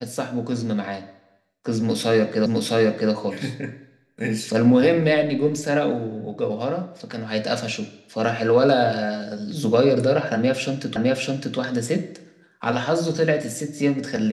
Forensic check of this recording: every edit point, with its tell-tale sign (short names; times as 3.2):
2.46 repeat of the last 0.66 s
10.96 repeat of the last 0.61 s